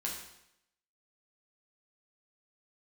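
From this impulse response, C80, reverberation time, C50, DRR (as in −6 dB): 7.0 dB, 0.80 s, 4.0 dB, −3.0 dB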